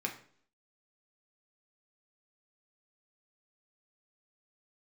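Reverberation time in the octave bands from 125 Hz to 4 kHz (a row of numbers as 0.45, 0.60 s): 0.55, 0.65, 0.60, 0.50, 0.50, 0.50 s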